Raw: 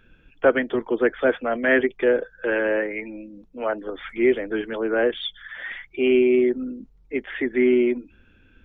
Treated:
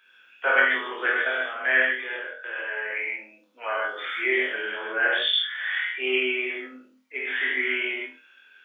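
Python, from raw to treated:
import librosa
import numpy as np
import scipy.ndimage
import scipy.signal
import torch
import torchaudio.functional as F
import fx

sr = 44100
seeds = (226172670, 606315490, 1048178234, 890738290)

y = scipy.signal.sosfilt(scipy.signal.butter(2, 1300.0, 'highpass', fs=sr, output='sos'), x)
y = fx.level_steps(y, sr, step_db=13, at=(1.21, 2.95))
y = fx.high_shelf(y, sr, hz=2100.0, db=-10.5, at=(4.6, 5.0))
y = fx.room_flutter(y, sr, wall_m=4.0, rt60_s=0.3)
y = fx.rev_gated(y, sr, seeds[0], gate_ms=180, shape='flat', drr_db=-5.5)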